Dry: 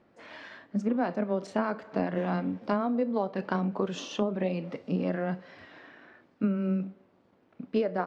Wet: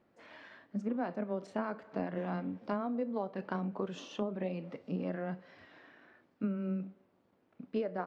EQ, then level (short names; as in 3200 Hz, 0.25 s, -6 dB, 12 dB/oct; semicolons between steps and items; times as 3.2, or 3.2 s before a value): dynamic EQ 5600 Hz, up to -4 dB, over -56 dBFS, Q 0.82; -7.0 dB